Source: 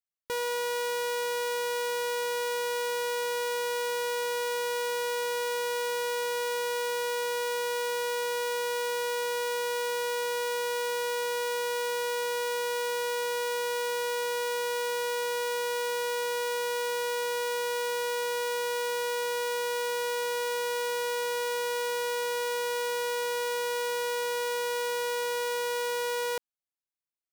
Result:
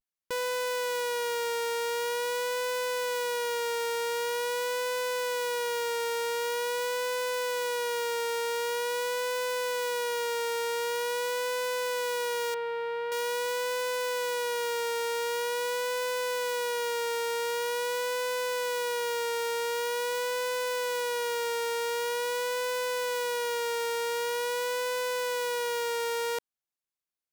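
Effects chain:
pitch vibrato 0.45 Hz 55 cents
0:12.54–0:13.12: high-frequency loss of the air 440 metres

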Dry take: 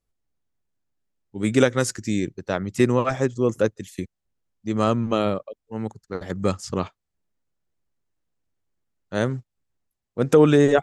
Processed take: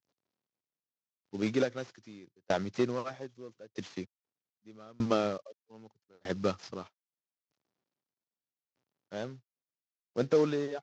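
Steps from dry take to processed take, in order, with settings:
variable-slope delta modulation 32 kbit/s
high-pass filter 99 Hz 24 dB per octave
bass and treble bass −5 dB, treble +3 dB
tempo change 1×
tremolo with a ramp in dB decaying 0.8 Hz, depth 32 dB

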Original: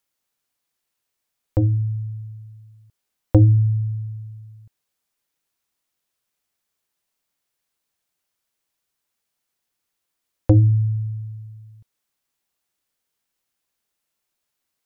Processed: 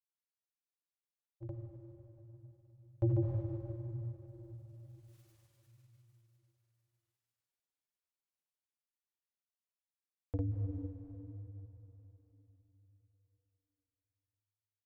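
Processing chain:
source passing by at 0:05.20, 28 m/s, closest 3 metres
sample-and-hold tremolo 3.5 Hz, depth 55%
on a send at −1.5 dB: convolution reverb RT60 3.9 s, pre-delay 93 ms
on the sum: granular cloud, pitch spread up and down by 0 semitones
level +11 dB

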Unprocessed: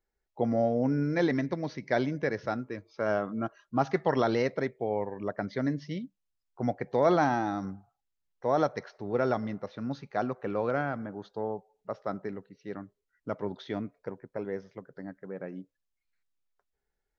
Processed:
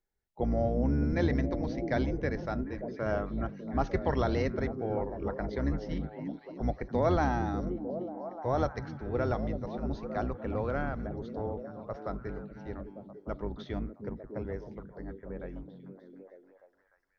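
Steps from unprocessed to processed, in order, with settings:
sub-octave generator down 2 octaves, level +3 dB
on a send: echo through a band-pass that steps 300 ms, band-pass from 180 Hz, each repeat 0.7 octaves, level −2.5 dB
on the sum: level −4 dB

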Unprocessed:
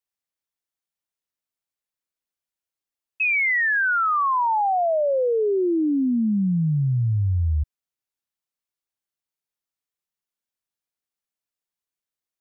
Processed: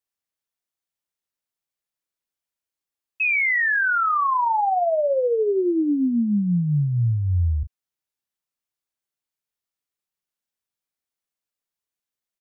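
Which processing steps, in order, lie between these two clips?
double-tracking delay 34 ms −12 dB

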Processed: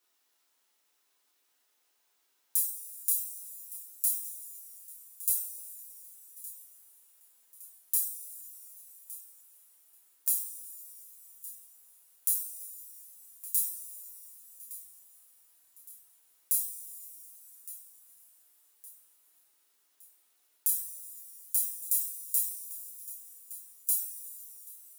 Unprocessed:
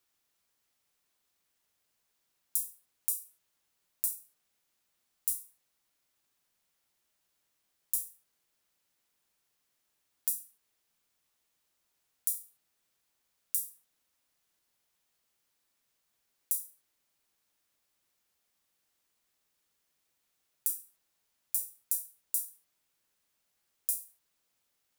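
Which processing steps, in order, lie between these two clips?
high-pass filter 260 Hz 24 dB per octave
feedback echo with a high-pass in the loop 1,164 ms, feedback 48%, level −16 dB
coupled-rooms reverb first 0.47 s, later 4.5 s, from −18 dB, DRR −3.5 dB

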